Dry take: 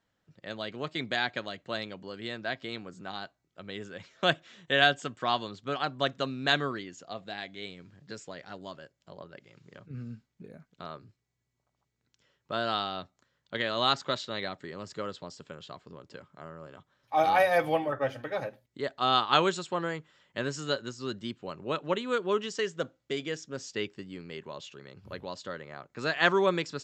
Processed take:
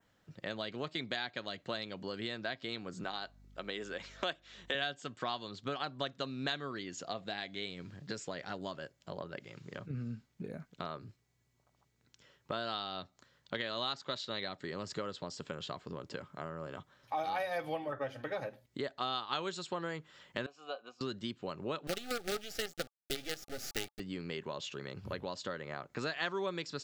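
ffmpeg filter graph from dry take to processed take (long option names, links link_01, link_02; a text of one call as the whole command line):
ffmpeg -i in.wav -filter_complex "[0:a]asettb=1/sr,asplit=3[link_01][link_02][link_03];[link_01]atrim=end=3.044[link_04];[link_02]atrim=start=3.04:end=4.75,asetpts=PTS-STARTPTS,afade=type=in:duration=0.004:curve=qsin,afade=type=out:start_time=1.706:duration=0.004:curve=qsin,highpass=280,aeval=exprs='val(0)+0.000708*(sin(2*PI*50*n/s)+sin(2*PI*2*50*n/s)/2+sin(2*PI*3*50*n/s)/3+sin(2*PI*4*50*n/s)/4+sin(2*PI*5*50*n/s)/5)':channel_layout=same[link_05];[link_03]atrim=start=4.746[link_06];[link_04][link_05]acrossfade=duration=0.004:curve1=hsin:curve2=qsin[link_07];[link_07][link_06]acrossfade=duration=0.004:curve1=qsin:curve2=hsin,asettb=1/sr,asplit=3[link_08][link_09][link_10];[link_08]atrim=end=20.464[link_11];[link_09]atrim=start=20.46:end=21.01,asetpts=PTS-STARTPTS,afade=type=in:duration=0.004:curve=qsin,afade=type=out:start_time=0.546:duration=0.004:curve=qsin,asplit=3[link_12][link_13][link_14];[link_12]bandpass=frequency=730:width_type=q:width=8,volume=0dB[link_15];[link_13]bandpass=frequency=1090:width_type=q:width=8,volume=-6dB[link_16];[link_14]bandpass=frequency=2440:width_type=q:width=8,volume=-9dB[link_17];[link_15][link_16][link_17]amix=inputs=3:normalize=0,lowshelf=frequency=160:gain=-8.5,aecho=1:1:4.1:0.33,atrim=end_sample=24255[link_18];[link_10]atrim=start=21.006[link_19];[link_11][link_18]acrossfade=duration=0.004:curve1=hsin:curve2=qsin[link_20];[link_20][link_19]acrossfade=duration=0.004:curve1=qsin:curve2=hsin,asettb=1/sr,asplit=3[link_21][link_22][link_23];[link_21]atrim=end=21.874[link_24];[link_22]atrim=start=21.87:end=24,asetpts=PTS-STARTPTS,afade=type=in:duration=0.004:curve=qsin,afade=type=out:start_time=2.126:duration=0.004:curve=qsin,acrusher=bits=5:dc=4:mix=0:aa=0.000001,asuperstop=centerf=1000:order=20:qfactor=3.3[link_25];[link_23]atrim=start=23.996[link_26];[link_24][link_25]acrossfade=duration=0.004:curve1=hsin:curve2=qsin[link_27];[link_27][link_26]acrossfade=duration=0.004:curve1=qsin:curve2=hsin,adynamicequalizer=threshold=0.00562:dfrequency=4300:dqfactor=1.8:tfrequency=4300:tqfactor=1.8:attack=5:release=100:ratio=0.375:range=2.5:mode=boostabove:tftype=bell,acompressor=threshold=-43dB:ratio=4,volume=6dB" out.wav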